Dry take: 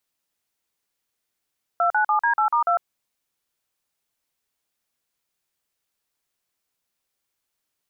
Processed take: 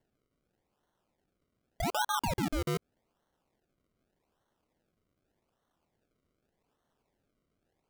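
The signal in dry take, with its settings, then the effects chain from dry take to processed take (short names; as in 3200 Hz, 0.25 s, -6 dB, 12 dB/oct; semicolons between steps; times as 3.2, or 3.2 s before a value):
DTMF "297D8*2", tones 0.102 s, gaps 43 ms, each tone -19.5 dBFS
limiter -24.5 dBFS; decimation with a swept rate 35×, swing 100% 0.84 Hz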